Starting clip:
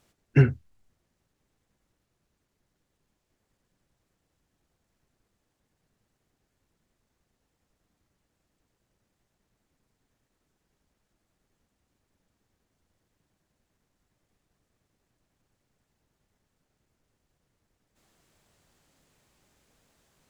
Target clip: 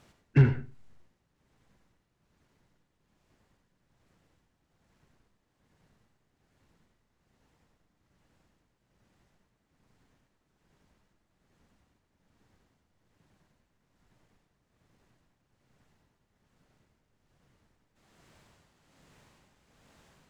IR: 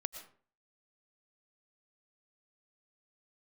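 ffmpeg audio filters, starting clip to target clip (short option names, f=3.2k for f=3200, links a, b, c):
-filter_complex "[0:a]asplit=2[a][b];[b]highpass=f=720:p=1,volume=21dB,asoftclip=type=tanh:threshold=-6.5dB[c];[a][c]amix=inputs=2:normalize=0,lowpass=f=2.1k:p=1,volume=-6dB,tremolo=f=1.2:d=0.6,bass=f=250:g=14,treble=f=4k:g=2[d];[1:a]atrim=start_sample=2205,asetrate=66150,aresample=44100[e];[d][e]afir=irnorm=-1:irlink=0"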